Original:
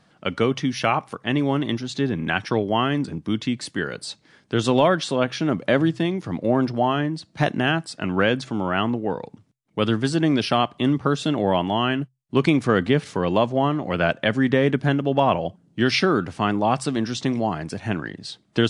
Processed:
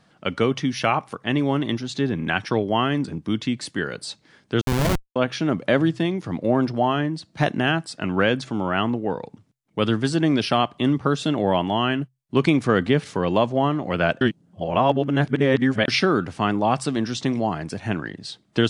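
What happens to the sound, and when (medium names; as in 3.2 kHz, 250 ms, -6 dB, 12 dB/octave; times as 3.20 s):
4.61–5.16 s: Schmitt trigger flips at -16 dBFS
14.21–15.88 s: reverse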